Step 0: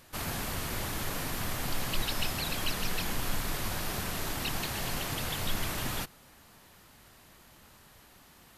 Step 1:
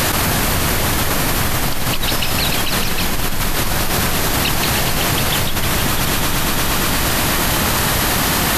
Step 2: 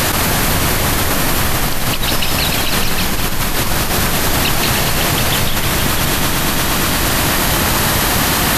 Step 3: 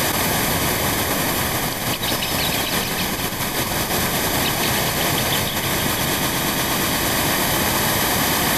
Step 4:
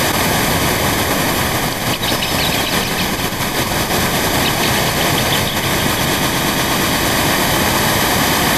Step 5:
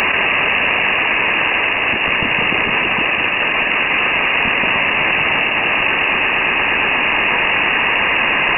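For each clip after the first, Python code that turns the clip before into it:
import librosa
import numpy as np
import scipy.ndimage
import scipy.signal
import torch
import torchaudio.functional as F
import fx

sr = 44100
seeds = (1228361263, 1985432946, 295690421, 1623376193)

y1 = fx.echo_heads(x, sr, ms=117, heads='second and third', feedback_pct=59, wet_db=-15.5)
y1 = fx.env_flatten(y1, sr, amount_pct=100)
y1 = y1 * 10.0 ** (7.0 / 20.0)
y2 = y1 + 10.0 ** (-8.5 / 20.0) * np.pad(y1, (int(197 * sr / 1000.0), 0))[:len(y1)]
y2 = y2 * 10.0 ** (1.5 / 20.0)
y3 = fx.notch_comb(y2, sr, f0_hz=1400.0)
y3 = y3 * 10.0 ** (-3.0 / 20.0)
y4 = fx.high_shelf(y3, sr, hz=9800.0, db=-7.5)
y4 = y4 * 10.0 ** (5.5 / 20.0)
y5 = fx.tracing_dist(y4, sr, depth_ms=0.063)
y5 = fx.freq_invert(y5, sr, carrier_hz=2800)
y5 = fx.env_flatten(y5, sr, amount_pct=70)
y5 = y5 * 10.0 ** (-1.0 / 20.0)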